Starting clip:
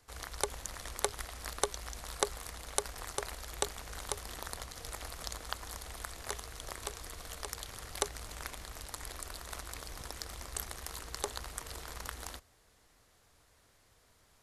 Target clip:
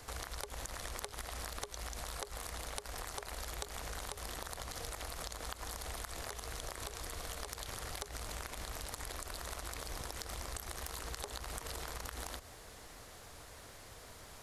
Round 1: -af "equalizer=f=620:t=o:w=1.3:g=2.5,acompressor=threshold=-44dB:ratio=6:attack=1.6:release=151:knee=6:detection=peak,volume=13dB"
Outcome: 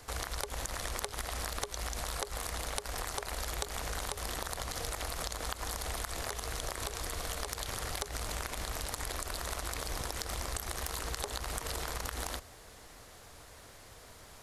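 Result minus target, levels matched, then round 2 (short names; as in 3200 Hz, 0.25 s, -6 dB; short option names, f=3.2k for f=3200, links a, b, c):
compressor: peak gain reduction -6 dB
-af "equalizer=f=620:t=o:w=1.3:g=2.5,acompressor=threshold=-51dB:ratio=6:attack=1.6:release=151:knee=6:detection=peak,volume=13dB"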